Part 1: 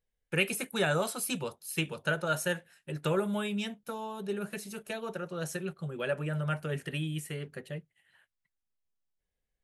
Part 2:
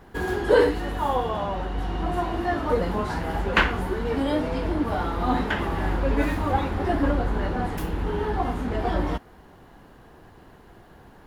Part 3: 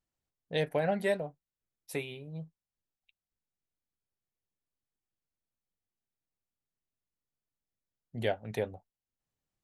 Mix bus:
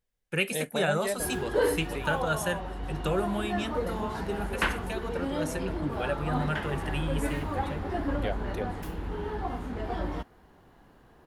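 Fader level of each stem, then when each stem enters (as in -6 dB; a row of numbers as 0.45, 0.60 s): +0.5, -7.5, -2.5 dB; 0.00, 1.05, 0.00 s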